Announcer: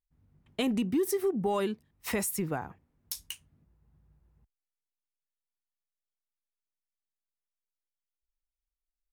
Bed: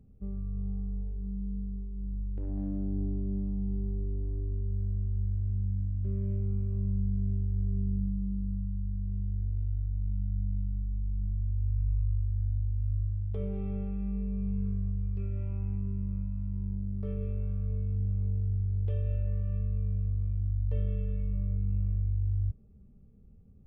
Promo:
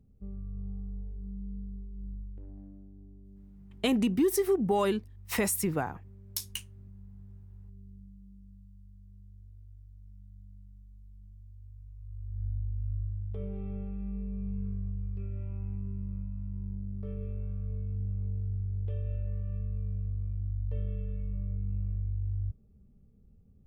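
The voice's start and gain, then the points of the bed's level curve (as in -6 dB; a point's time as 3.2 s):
3.25 s, +2.5 dB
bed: 2.1 s -4.5 dB
2.93 s -20 dB
11.95 s -20 dB
12.45 s -3.5 dB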